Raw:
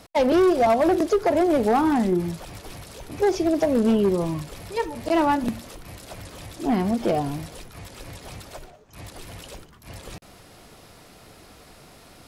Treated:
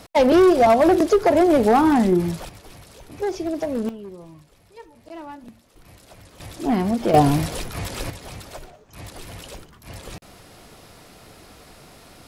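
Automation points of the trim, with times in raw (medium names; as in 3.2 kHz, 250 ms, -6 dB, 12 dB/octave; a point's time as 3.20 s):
+4 dB
from 2.49 s -4.5 dB
from 3.89 s -17 dB
from 5.76 s -7.5 dB
from 6.40 s +1.5 dB
from 7.14 s +11 dB
from 8.10 s +2 dB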